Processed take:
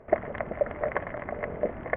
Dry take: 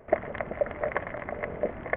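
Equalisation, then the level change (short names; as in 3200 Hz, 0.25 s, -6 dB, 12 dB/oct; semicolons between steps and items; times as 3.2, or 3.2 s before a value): LPF 2300 Hz 6 dB/oct; +1.0 dB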